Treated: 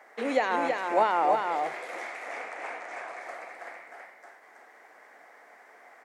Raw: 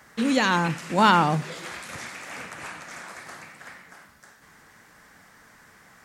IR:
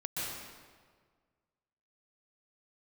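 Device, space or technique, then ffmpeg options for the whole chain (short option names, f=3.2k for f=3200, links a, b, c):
laptop speaker: -filter_complex "[0:a]asettb=1/sr,asplit=3[a][b][c];[a]atrim=end=2.074[d];[b]atrim=start=2.07:end=3.21,asetpts=PTS-STARTPTS,afade=t=in:d=0.004:c=qsin,afade=t=out:st=1.136:d=0.004:c=qsin,lowpass=9.7k[e];[c]atrim=start=3.206[f];[d][e]acrossfade=d=0.004:c1=hsin:c2=qsin[g];[g][f]acrossfade=d=0.004:c1=qsin:c2=hsin,highpass=f=400:w=0.5412,highpass=f=400:w=1.3066,equalizer=f=720:t=o:w=0.4:g=8.5,equalizer=f=2.1k:t=o:w=0.45:g=10,alimiter=limit=-12dB:level=0:latency=1:release=379,tiltshelf=f=1.2k:g=9,aecho=1:1:325:0.596,volume=-4.5dB"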